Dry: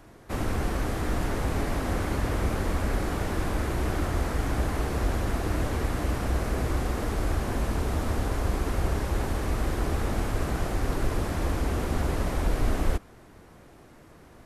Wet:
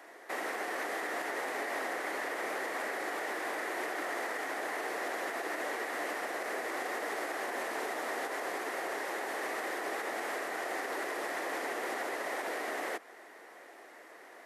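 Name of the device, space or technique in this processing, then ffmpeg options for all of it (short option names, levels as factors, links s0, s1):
laptop speaker: -af "highpass=f=370:w=0.5412,highpass=f=370:w=1.3066,equalizer=f=730:t=o:w=0.53:g=4,equalizer=f=1900:t=o:w=0.37:g=11.5,alimiter=level_in=1.41:limit=0.0631:level=0:latency=1:release=146,volume=0.708"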